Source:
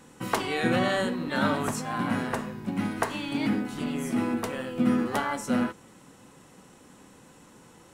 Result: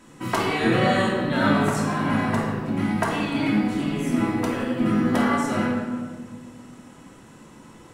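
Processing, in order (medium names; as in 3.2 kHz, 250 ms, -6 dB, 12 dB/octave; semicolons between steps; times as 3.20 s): treble shelf 9.8 kHz -5.5 dB; simulated room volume 1600 m³, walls mixed, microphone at 2.9 m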